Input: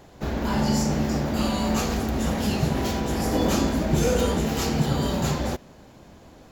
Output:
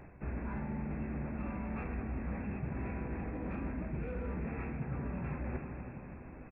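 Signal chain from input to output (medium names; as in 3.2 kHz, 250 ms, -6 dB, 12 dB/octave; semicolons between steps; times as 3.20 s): brick-wall FIR low-pass 2.7 kHz; doubling 16 ms -11.5 dB; on a send: multi-head delay 165 ms, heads first and second, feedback 54%, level -21 dB; on the sum: saturation -11 dBFS, distortion -26 dB; reverse; compression 10:1, threshold -34 dBFS, peak gain reduction 16 dB; reverse; peaking EQ 640 Hz -7.5 dB 2.5 oct; trim +1.5 dB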